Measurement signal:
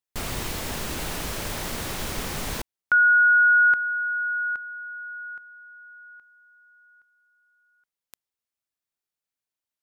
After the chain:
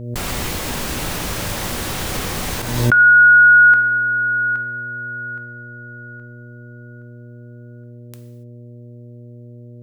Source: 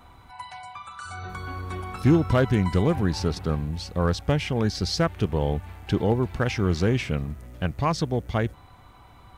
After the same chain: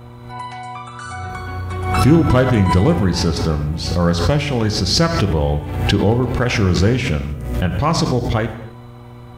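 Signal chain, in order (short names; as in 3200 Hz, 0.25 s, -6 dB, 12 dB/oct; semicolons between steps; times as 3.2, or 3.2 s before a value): non-linear reverb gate 0.31 s falling, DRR 6 dB; buzz 120 Hz, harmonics 5, -44 dBFS -7 dB/oct; backwards sustainer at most 51 dB/s; gain +5.5 dB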